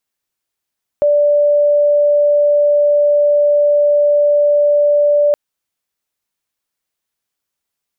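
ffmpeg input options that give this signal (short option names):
-f lavfi -i "aevalsrc='0.376*sin(2*PI*585*t)':d=4.32:s=44100"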